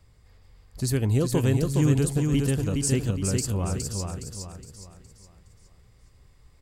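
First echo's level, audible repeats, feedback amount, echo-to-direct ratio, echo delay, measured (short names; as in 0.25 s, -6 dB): -4.0 dB, 4, 40%, -3.0 dB, 0.415 s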